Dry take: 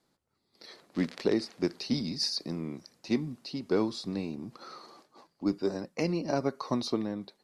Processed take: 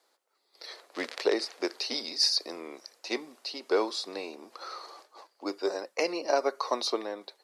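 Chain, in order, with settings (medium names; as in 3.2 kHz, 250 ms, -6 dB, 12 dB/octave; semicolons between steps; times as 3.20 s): high-pass 440 Hz 24 dB/octave; trim +6 dB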